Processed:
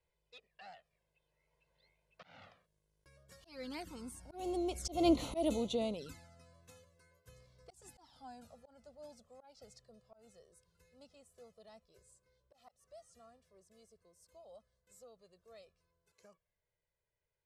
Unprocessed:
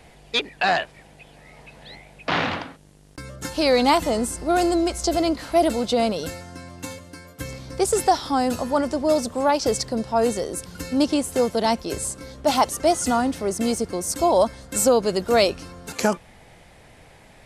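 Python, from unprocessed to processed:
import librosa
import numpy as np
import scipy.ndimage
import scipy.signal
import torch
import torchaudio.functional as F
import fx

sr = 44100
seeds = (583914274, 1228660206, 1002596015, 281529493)

y = fx.doppler_pass(x, sr, speed_mps=13, closest_m=2.1, pass_at_s=5.21)
y = fx.env_flanger(y, sr, rest_ms=2.0, full_db=-30.0)
y = fx.auto_swell(y, sr, attack_ms=184.0)
y = y * 10.0 ** (-2.5 / 20.0)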